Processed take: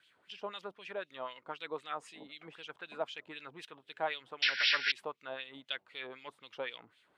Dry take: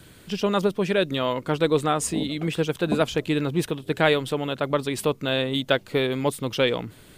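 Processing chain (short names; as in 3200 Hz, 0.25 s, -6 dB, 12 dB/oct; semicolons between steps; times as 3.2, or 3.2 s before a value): painted sound noise, 4.42–4.92, 1400–5700 Hz -14 dBFS; LFO band-pass sine 3.9 Hz 790–3300 Hz; gain -8.5 dB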